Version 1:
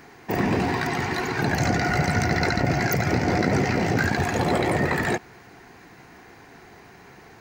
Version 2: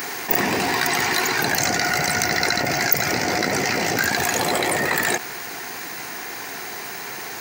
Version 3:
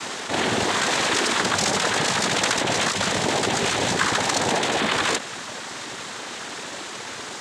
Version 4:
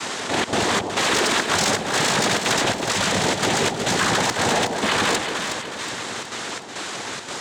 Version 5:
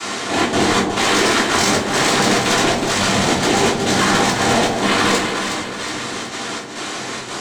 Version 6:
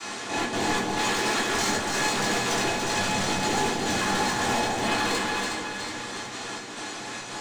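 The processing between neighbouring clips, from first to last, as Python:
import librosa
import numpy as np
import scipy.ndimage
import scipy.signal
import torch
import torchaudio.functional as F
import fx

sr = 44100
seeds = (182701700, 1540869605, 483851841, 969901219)

y1 = fx.rider(x, sr, range_db=10, speed_s=0.5)
y1 = fx.riaa(y1, sr, side='recording')
y1 = fx.env_flatten(y1, sr, amount_pct=50)
y1 = F.gain(torch.from_numpy(y1), -4.0).numpy()
y2 = fx.noise_vocoder(y1, sr, seeds[0], bands=6)
y3 = 10.0 ** (-16.0 / 20.0) * np.tanh(y2 / 10.0 ** (-16.0 / 20.0))
y3 = fx.step_gate(y3, sr, bpm=171, pattern='xxxxx.xxx..', floor_db=-24.0, edge_ms=4.5)
y3 = fx.echo_alternate(y3, sr, ms=184, hz=900.0, feedback_pct=71, wet_db=-4)
y3 = F.gain(torch.from_numpy(y3), 3.0).numpy()
y4 = fx.room_shoebox(y3, sr, seeds[1], volume_m3=290.0, walls='furnished', distance_m=3.2)
y4 = F.gain(torch.from_numpy(y4), -1.5).numpy()
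y5 = np.clip(10.0 ** (11.0 / 20.0) * y4, -1.0, 1.0) / 10.0 ** (11.0 / 20.0)
y5 = fx.comb_fb(y5, sr, f0_hz=840.0, decay_s=0.18, harmonics='all', damping=0.0, mix_pct=80)
y5 = y5 + 10.0 ** (-5.0 / 20.0) * np.pad(y5, (int(288 * sr / 1000.0), 0))[:len(y5)]
y5 = F.gain(torch.from_numpy(y5), 2.0).numpy()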